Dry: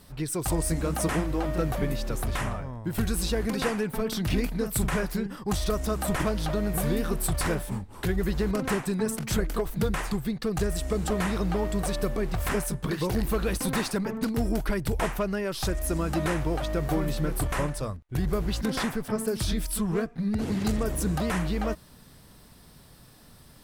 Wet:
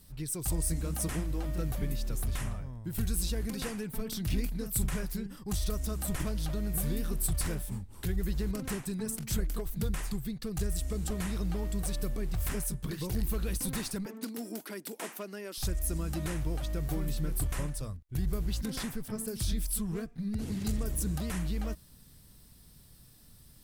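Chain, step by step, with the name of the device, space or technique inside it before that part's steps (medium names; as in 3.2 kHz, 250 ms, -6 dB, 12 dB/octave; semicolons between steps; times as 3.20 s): smiley-face EQ (bass shelf 110 Hz +5.5 dB; peaking EQ 850 Hz -8 dB 2.9 oct; treble shelf 7.1 kHz +7 dB); 14.06–15.58 s: steep high-pass 230 Hz 36 dB/octave; trim -6 dB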